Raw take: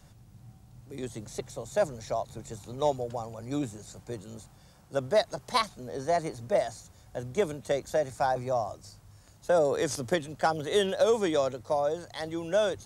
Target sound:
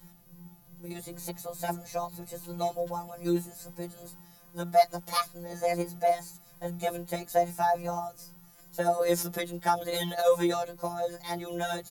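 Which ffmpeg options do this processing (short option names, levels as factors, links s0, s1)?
-filter_complex "[0:a]asplit=2[s0][s1];[s1]alimiter=limit=0.112:level=0:latency=1:release=392,volume=1.19[s2];[s0][s2]amix=inputs=2:normalize=0,asetrate=47628,aresample=44100,afftfilt=real='hypot(re,im)*cos(PI*b)':imag='0':win_size=1024:overlap=0.75,aexciter=amount=3.6:drive=9.1:freq=11000,asplit=2[s3][s4];[s4]adelay=9.1,afreqshift=2.4[s5];[s3][s5]amix=inputs=2:normalize=1"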